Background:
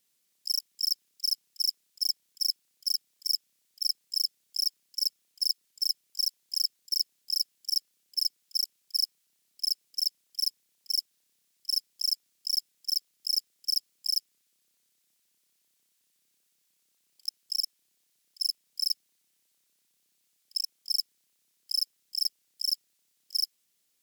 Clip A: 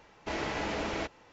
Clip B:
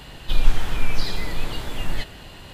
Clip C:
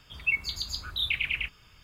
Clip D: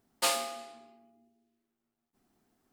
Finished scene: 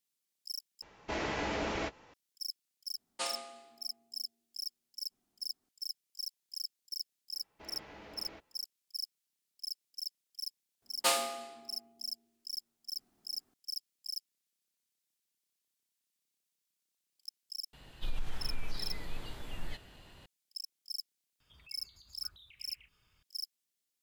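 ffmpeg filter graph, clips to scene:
-filter_complex "[1:a]asplit=2[s0][s1];[4:a]asplit=2[s2][s3];[0:a]volume=0.251[s4];[s0]asplit=2[s5][s6];[s6]adelay=17,volume=0.211[s7];[s5][s7]amix=inputs=2:normalize=0[s8];[s2]aresample=22050,aresample=44100[s9];[s1]lowpass=5500[s10];[2:a]acompressor=threshold=0.282:ratio=6:attack=3.2:release=140:knee=1:detection=peak[s11];[3:a]acompressor=threshold=0.00891:ratio=6:attack=3.2:release=140:knee=1:detection=peak[s12];[s4]asplit=2[s13][s14];[s13]atrim=end=0.824[s15];[s8]atrim=end=1.32,asetpts=PTS-STARTPTS,volume=0.841[s16];[s14]atrim=start=2.136[s17];[s9]atrim=end=2.72,asetpts=PTS-STARTPTS,volume=0.355,afade=t=in:d=0.004:c=hsin,afade=t=out:st=2.716:d=0.004:c=hsin,adelay=2970[s18];[s10]atrim=end=1.32,asetpts=PTS-STARTPTS,volume=0.126,afade=t=in:d=0.004:c=hsin,afade=t=out:st=1.316:d=0.004:c=hsin,adelay=7330[s19];[s3]atrim=end=2.72,asetpts=PTS-STARTPTS,volume=0.944,afade=t=in:d=0.004:c=hsin,afade=t=out:st=2.716:d=0.004:c=hsin,adelay=477162S[s20];[s11]atrim=end=2.53,asetpts=PTS-STARTPTS,volume=0.178,afade=t=in:d=0.004:c=hsin,afade=t=out:st=2.526:d=0.004:c=hsin,adelay=17730[s21];[s12]atrim=end=1.83,asetpts=PTS-STARTPTS,volume=0.168,afade=t=in:d=0.004:c=hsin,afade=t=out:st=1.826:d=0.004:c=hsin,adelay=21400[s22];[s15][s16]acrossfade=d=0.004:c1=hsin:c2=hsin[s23];[s23][s17]acrossfade=d=0.004:c1=hsin:c2=hsin[s24];[s24][s18][s19][s20][s21][s22]amix=inputs=6:normalize=0"

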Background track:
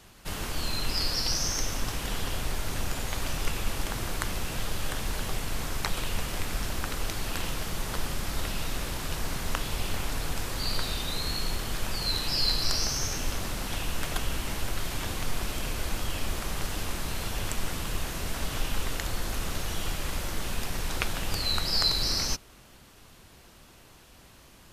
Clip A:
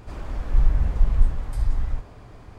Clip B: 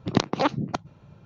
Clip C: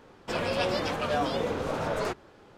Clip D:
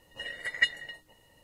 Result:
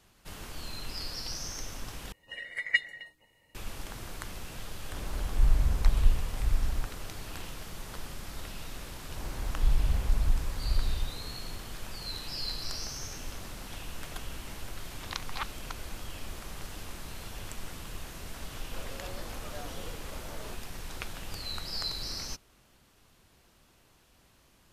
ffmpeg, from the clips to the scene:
-filter_complex "[1:a]asplit=2[s0][s1];[0:a]volume=0.335[s2];[4:a]equalizer=f=2200:w=4.9:g=14[s3];[s1]alimiter=level_in=2.66:limit=0.891:release=50:level=0:latency=1[s4];[2:a]highpass=f=1100:w=0.5412,highpass=f=1100:w=1.3066[s5];[s2]asplit=2[s6][s7];[s6]atrim=end=2.124[s8];[s3]atrim=end=1.43,asetpts=PTS-STARTPTS,volume=0.473[s9];[s7]atrim=start=3.546[s10];[s0]atrim=end=2.58,asetpts=PTS-STARTPTS,volume=0.562,afade=t=in:d=0.004:c=hsin,afade=t=out:st=2.576:d=0.004:c=hsin,adelay=213885S[s11];[s4]atrim=end=2.58,asetpts=PTS-STARTPTS,volume=0.188,afade=t=in:d=0.004:c=hsin,afade=t=out:st=2.576:d=0.004:c=hsin,adelay=9090[s12];[s5]atrim=end=1.25,asetpts=PTS-STARTPTS,volume=0.447,afade=t=in:d=0.004:c=hsin,afade=t=out:st=1.246:d=0.004:c=hsin,adelay=14960[s13];[3:a]atrim=end=2.57,asetpts=PTS-STARTPTS,volume=0.141,afade=t=in:d=0.004:c=hsin,afade=t=out:st=2.566:d=0.004:c=hsin,adelay=18430[s14];[s8][s9]acrossfade=d=0.004:c1=hsin:c2=hsin[s15];[s15][s10]acrossfade=d=0.004:c1=hsin:c2=hsin[s16];[s16][s11][s12][s13][s14]amix=inputs=5:normalize=0"

